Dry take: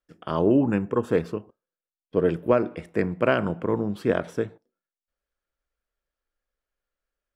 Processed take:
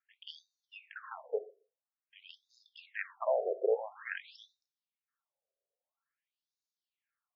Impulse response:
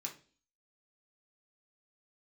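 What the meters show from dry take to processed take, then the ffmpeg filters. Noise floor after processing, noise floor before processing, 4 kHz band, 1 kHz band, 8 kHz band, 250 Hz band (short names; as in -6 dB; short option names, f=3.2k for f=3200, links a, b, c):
under -85 dBFS, under -85 dBFS, -7.0 dB, -11.5 dB, n/a, under -30 dB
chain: -filter_complex "[0:a]alimiter=limit=-14dB:level=0:latency=1:release=147,asplit=2[a][b];[1:a]atrim=start_sample=2205[c];[b][c]afir=irnorm=-1:irlink=0,volume=-5.5dB[d];[a][d]amix=inputs=2:normalize=0,afftfilt=real='re*between(b*sr/1024,510*pow(5100/510,0.5+0.5*sin(2*PI*0.49*pts/sr))/1.41,510*pow(5100/510,0.5+0.5*sin(2*PI*0.49*pts/sr))*1.41)':imag='im*between(b*sr/1024,510*pow(5100/510,0.5+0.5*sin(2*PI*0.49*pts/sr))/1.41,510*pow(5100/510,0.5+0.5*sin(2*PI*0.49*pts/sr))*1.41)':win_size=1024:overlap=0.75"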